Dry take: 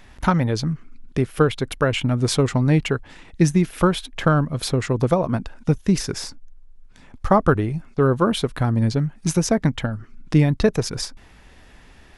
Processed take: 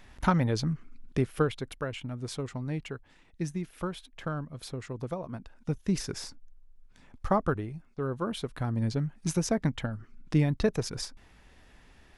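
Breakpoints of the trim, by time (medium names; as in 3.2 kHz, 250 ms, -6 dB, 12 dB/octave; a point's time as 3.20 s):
1.19 s -6 dB
1.99 s -16.5 dB
5.37 s -16.5 dB
5.96 s -9 dB
7.29 s -9 dB
7.86 s -16 dB
9.00 s -8.5 dB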